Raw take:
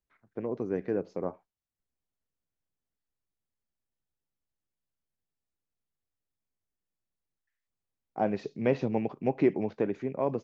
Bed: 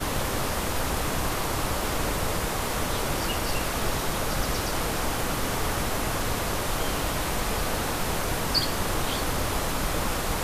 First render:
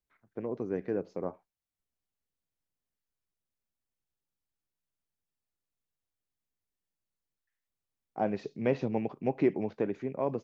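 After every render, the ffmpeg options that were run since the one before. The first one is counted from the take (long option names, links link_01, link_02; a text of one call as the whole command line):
ffmpeg -i in.wav -af "volume=-2dB" out.wav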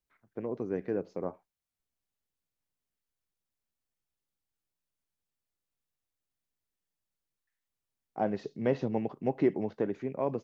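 ffmpeg -i in.wav -filter_complex "[0:a]asettb=1/sr,asplit=3[link_01][link_02][link_03];[link_01]atrim=end=8.234[link_04];[link_02]atrim=start=8.23:end=9.95,asetpts=PTS-STARTPTS,afade=type=in:duration=0.004:curve=qsin,afade=type=out:start_time=1.716:duration=0.004:curve=qsin,bandreject=frequency=2400:width=6.7[link_05];[link_03]atrim=start=9.946[link_06];[link_04][link_05]acrossfade=duration=0.004:curve1=hsin:curve2=qsin[link_07];[link_07][link_06]acrossfade=duration=0.004:curve1=qsin:curve2=hsin" out.wav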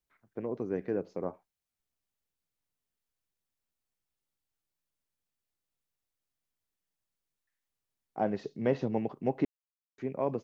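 ffmpeg -i in.wav -filter_complex "[0:a]asplit=3[link_01][link_02][link_03];[link_01]atrim=end=9.45,asetpts=PTS-STARTPTS,afade=type=out:start_time=9.446:duration=0.004:curve=hsin[link_04];[link_02]atrim=start=9.45:end=9.98,asetpts=PTS-STARTPTS,volume=0[link_05];[link_03]atrim=start=9.98,asetpts=PTS-STARTPTS,afade=type=in:duration=0.004:curve=hsin[link_06];[link_04][link_05][link_06]concat=n=3:v=0:a=1" out.wav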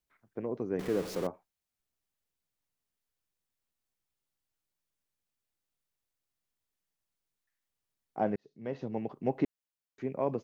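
ffmpeg -i in.wav -filter_complex "[0:a]asettb=1/sr,asplit=3[link_01][link_02][link_03];[link_01]atrim=end=0.794[link_04];[link_02]atrim=start=0.79:end=1.27,asetpts=PTS-STARTPTS,afade=type=in:duration=0.004:curve=qsin,afade=type=out:start_time=0.476:duration=0.004:curve=qsin,aeval=exprs='val(0)+0.5*0.0158*sgn(val(0))':channel_layout=same[link_05];[link_03]atrim=start=1.266[link_06];[link_04][link_05]acrossfade=duration=0.004:curve1=hsin:curve2=qsin[link_07];[link_07][link_06]acrossfade=duration=0.004:curve1=qsin:curve2=hsin,asplit=2[link_08][link_09];[link_08]atrim=end=8.36,asetpts=PTS-STARTPTS,afade=type=out:start_time=8.356:duration=0.004:curve=hsin[link_10];[link_09]atrim=start=8.36,asetpts=PTS-STARTPTS,afade=type=in:duration=0.98[link_11];[link_10][link_11]concat=n=2:v=0:a=1" out.wav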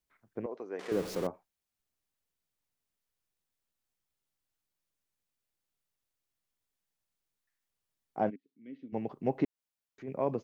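ffmpeg -i in.wav -filter_complex "[0:a]asettb=1/sr,asplit=3[link_01][link_02][link_03];[link_01]atrim=end=0.464[link_04];[link_02]atrim=start=0.46:end=0.92,asetpts=PTS-STARTPTS,afade=type=in:duration=0.004:curve=qsin,afade=type=out:start_time=0.456:duration=0.004:curve=qsin,highpass=530,lowpass=7600[link_05];[link_03]atrim=start=0.916[link_06];[link_04][link_05]acrossfade=duration=0.004:curve1=hsin:curve2=qsin[link_07];[link_07][link_06]acrossfade=duration=0.004:curve1=qsin:curve2=hsin,asplit=3[link_08][link_09][link_10];[link_08]afade=type=out:start_time=8.29:duration=0.02[link_11];[link_09]asplit=3[link_12][link_13][link_14];[link_12]bandpass=frequency=270:width_type=q:width=8,volume=0dB[link_15];[link_13]bandpass=frequency=2290:width_type=q:width=8,volume=-6dB[link_16];[link_14]bandpass=frequency=3010:width_type=q:width=8,volume=-9dB[link_17];[link_15][link_16][link_17]amix=inputs=3:normalize=0,afade=type=in:start_time=8.29:duration=0.02,afade=type=out:start_time=8.92:duration=0.02[link_18];[link_10]afade=type=in:start_time=8.92:duration=0.02[link_19];[link_11][link_18][link_19]amix=inputs=3:normalize=0,asplit=3[link_20][link_21][link_22];[link_20]afade=type=out:start_time=9.44:duration=0.02[link_23];[link_21]acompressor=threshold=-55dB:ratio=1.5:attack=3.2:release=140:knee=1:detection=peak,afade=type=in:start_time=9.44:duration=0.02,afade=type=out:start_time=10.07:duration=0.02[link_24];[link_22]afade=type=in:start_time=10.07:duration=0.02[link_25];[link_23][link_24][link_25]amix=inputs=3:normalize=0" out.wav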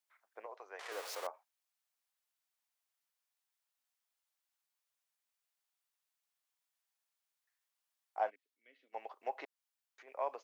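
ffmpeg -i in.wav -af "highpass=frequency=680:width=0.5412,highpass=frequency=680:width=1.3066" out.wav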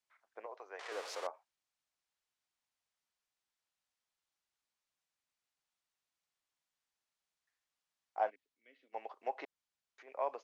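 ffmpeg -i in.wav -af "lowpass=7500,lowshelf=frequency=330:gain=5.5" out.wav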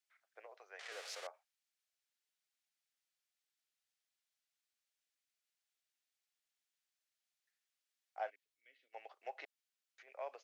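ffmpeg -i in.wav -af "highpass=740,equalizer=frequency=1000:width=2.2:gain=-12.5" out.wav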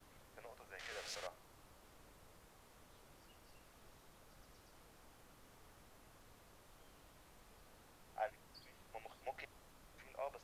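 ffmpeg -i in.wav -i bed.wav -filter_complex "[1:a]volume=-36.5dB[link_01];[0:a][link_01]amix=inputs=2:normalize=0" out.wav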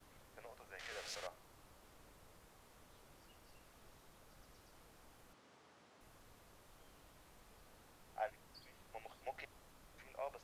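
ffmpeg -i in.wav -filter_complex "[0:a]asettb=1/sr,asplit=3[link_01][link_02][link_03];[link_01]atrim=end=5.334[link_04];[link_02]atrim=start=5.33:end=6.01,asetpts=PTS-STARTPTS,afade=type=in:duration=0.004:curve=qsin,afade=type=out:start_time=0.676:duration=0.004:curve=qsin,highpass=170,lowpass=6300[link_05];[link_03]atrim=start=6.006[link_06];[link_04][link_05]acrossfade=duration=0.004:curve1=hsin:curve2=qsin[link_07];[link_07][link_06]acrossfade=duration=0.004:curve1=qsin:curve2=hsin" out.wav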